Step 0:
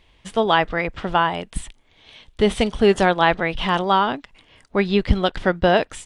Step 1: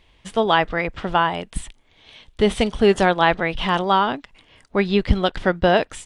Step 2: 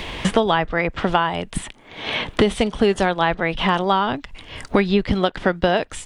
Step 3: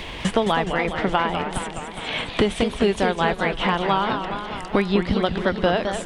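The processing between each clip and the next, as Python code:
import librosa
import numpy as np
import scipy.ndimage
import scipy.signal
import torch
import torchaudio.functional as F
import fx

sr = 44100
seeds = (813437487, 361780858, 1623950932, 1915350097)

y1 = x
y2 = fx.band_squash(y1, sr, depth_pct=100)
y2 = y2 * 10.0 ** (-1.0 / 20.0)
y3 = y2 + 10.0 ** (-23.5 / 20.0) * np.pad(y2, (int(310 * sr / 1000.0), 0))[:len(y2)]
y3 = fx.echo_warbled(y3, sr, ms=208, feedback_pct=68, rate_hz=2.8, cents=210, wet_db=-7.5)
y3 = y3 * 10.0 ** (-3.0 / 20.0)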